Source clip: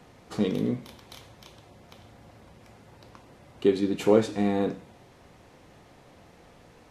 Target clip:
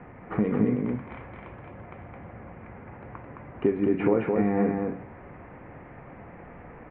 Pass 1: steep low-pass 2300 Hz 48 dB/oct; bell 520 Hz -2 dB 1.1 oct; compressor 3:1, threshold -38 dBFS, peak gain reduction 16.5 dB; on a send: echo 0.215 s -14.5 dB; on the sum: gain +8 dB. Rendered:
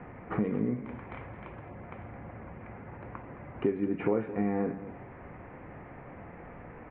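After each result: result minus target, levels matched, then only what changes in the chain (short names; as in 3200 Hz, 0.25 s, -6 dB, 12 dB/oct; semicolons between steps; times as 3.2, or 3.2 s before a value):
echo-to-direct -11 dB; compressor: peak gain reduction +4.5 dB
change: echo 0.215 s -3.5 dB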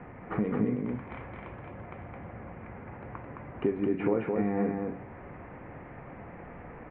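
compressor: peak gain reduction +4.5 dB
change: compressor 3:1, threshold -31 dBFS, peak gain reduction 12 dB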